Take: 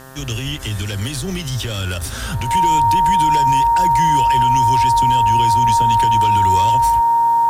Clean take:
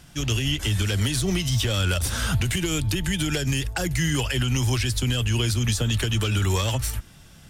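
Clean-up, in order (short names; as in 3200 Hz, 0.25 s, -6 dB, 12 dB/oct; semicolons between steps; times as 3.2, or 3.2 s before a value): de-hum 131.8 Hz, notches 14; notch 930 Hz, Q 30; expander -16 dBFS, range -21 dB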